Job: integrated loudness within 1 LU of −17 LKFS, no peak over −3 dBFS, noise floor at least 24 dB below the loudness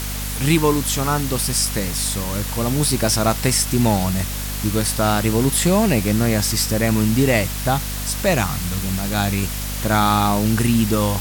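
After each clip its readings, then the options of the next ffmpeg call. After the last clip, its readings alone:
mains hum 50 Hz; hum harmonics up to 250 Hz; level of the hum −26 dBFS; background noise floor −26 dBFS; target noise floor −43 dBFS; integrated loudness −19.0 LKFS; sample peak −3.5 dBFS; target loudness −17.0 LKFS
→ -af "bandreject=frequency=50:width_type=h:width=4,bandreject=frequency=100:width_type=h:width=4,bandreject=frequency=150:width_type=h:width=4,bandreject=frequency=200:width_type=h:width=4,bandreject=frequency=250:width_type=h:width=4"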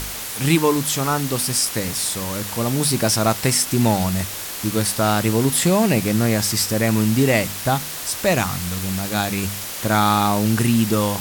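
mains hum none found; background noise floor −30 dBFS; target noise floor −44 dBFS
→ -af "afftdn=noise_reduction=14:noise_floor=-30"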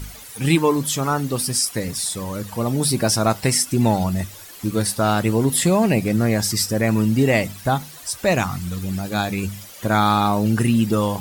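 background noise floor −40 dBFS; target noise floor −45 dBFS
→ -af "afftdn=noise_reduction=6:noise_floor=-40"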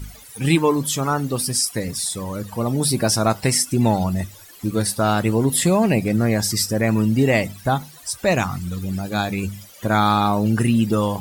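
background noise floor −44 dBFS; target noise floor −45 dBFS
→ -af "afftdn=noise_reduction=6:noise_floor=-44"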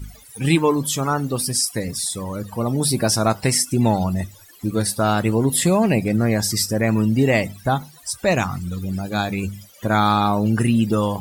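background noise floor −47 dBFS; integrated loudness −20.5 LKFS; sample peak −4.0 dBFS; target loudness −17.0 LKFS
→ -af "volume=3.5dB,alimiter=limit=-3dB:level=0:latency=1"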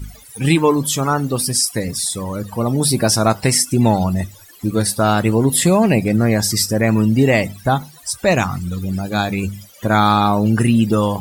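integrated loudness −17.0 LKFS; sample peak −3.0 dBFS; background noise floor −43 dBFS

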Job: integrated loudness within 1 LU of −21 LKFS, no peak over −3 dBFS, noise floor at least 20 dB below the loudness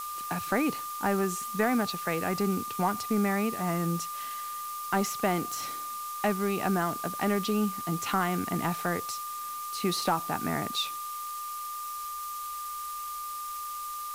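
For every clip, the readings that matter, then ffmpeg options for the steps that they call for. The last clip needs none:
interfering tone 1,200 Hz; level of the tone −35 dBFS; background noise floor −37 dBFS; target noise floor −51 dBFS; integrated loudness −30.5 LKFS; sample peak −14.0 dBFS; target loudness −21.0 LKFS
→ -af "bandreject=frequency=1200:width=30"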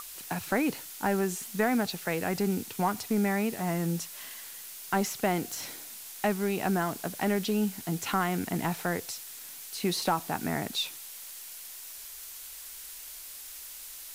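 interfering tone none found; background noise floor −44 dBFS; target noise floor −52 dBFS
→ -af "afftdn=noise_reduction=8:noise_floor=-44"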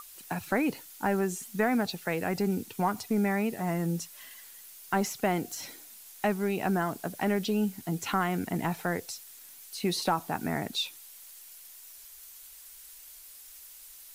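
background noise floor −50 dBFS; target noise floor −51 dBFS
→ -af "afftdn=noise_reduction=6:noise_floor=-50"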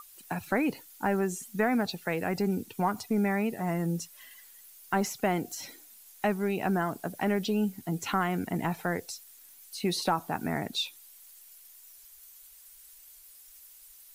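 background noise floor −54 dBFS; integrated loudness −30.5 LKFS; sample peak −15.0 dBFS; target loudness −21.0 LKFS
→ -af "volume=9.5dB"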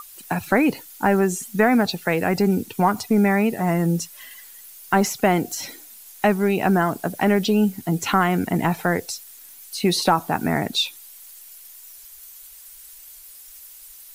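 integrated loudness −21.0 LKFS; sample peak −5.5 dBFS; background noise floor −44 dBFS

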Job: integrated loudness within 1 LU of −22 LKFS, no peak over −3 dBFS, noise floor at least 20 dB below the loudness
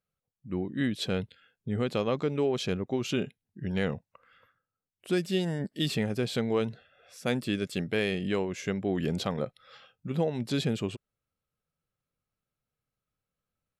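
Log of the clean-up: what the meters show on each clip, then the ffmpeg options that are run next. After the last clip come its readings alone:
integrated loudness −31.0 LKFS; sample peak −14.0 dBFS; target loudness −22.0 LKFS
→ -af "volume=9dB"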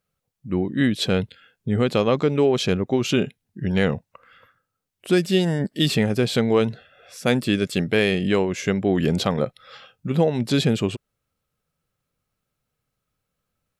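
integrated loudness −22.0 LKFS; sample peak −5.0 dBFS; background noise floor −81 dBFS

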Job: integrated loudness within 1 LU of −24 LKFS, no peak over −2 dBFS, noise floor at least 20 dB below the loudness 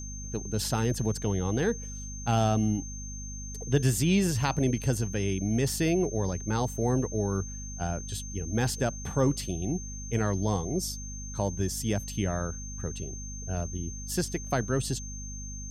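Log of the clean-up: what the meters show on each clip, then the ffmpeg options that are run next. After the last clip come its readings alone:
mains hum 50 Hz; hum harmonics up to 250 Hz; level of the hum −37 dBFS; interfering tone 6,300 Hz; level of the tone −41 dBFS; integrated loudness −30.0 LKFS; sample peak −11.0 dBFS; target loudness −24.0 LKFS
→ -af "bandreject=frequency=50:width_type=h:width=4,bandreject=frequency=100:width_type=h:width=4,bandreject=frequency=150:width_type=h:width=4,bandreject=frequency=200:width_type=h:width=4,bandreject=frequency=250:width_type=h:width=4"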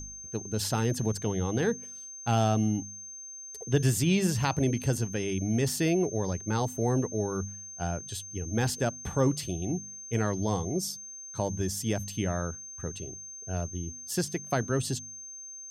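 mains hum none found; interfering tone 6,300 Hz; level of the tone −41 dBFS
→ -af "bandreject=frequency=6300:width=30"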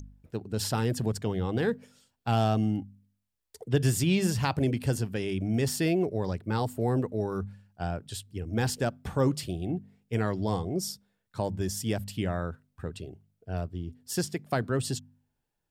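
interfering tone none found; integrated loudness −30.5 LKFS; sample peak −11.5 dBFS; target loudness −24.0 LKFS
→ -af "volume=6.5dB"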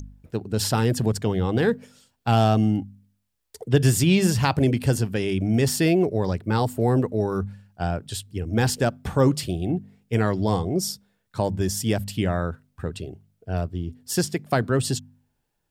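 integrated loudness −24.0 LKFS; sample peak −5.0 dBFS; background noise floor −75 dBFS

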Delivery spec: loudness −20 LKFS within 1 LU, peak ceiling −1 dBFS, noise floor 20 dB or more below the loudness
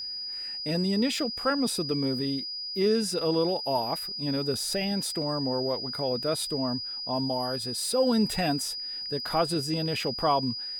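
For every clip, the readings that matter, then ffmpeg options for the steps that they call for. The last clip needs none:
interfering tone 4,900 Hz; level of the tone −33 dBFS; integrated loudness −28.0 LKFS; sample peak −12.5 dBFS; target loudness −20.0 LKFS
→ -af "bandreject=frequency=4900:width=30"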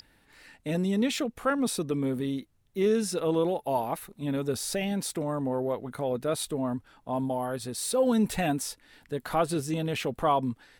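interfering tone none found; integrated loudness −29.5 LKFS; sample peak −13.0 dBFS; target loudness −20.0 LKFS
→ -af "volume=9.5dB"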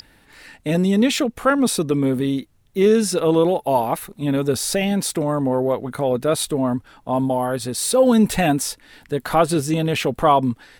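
integrated loudness −20.0 LKFS; sample peak −3.5 dBFS; background noise floor −55 dBFS

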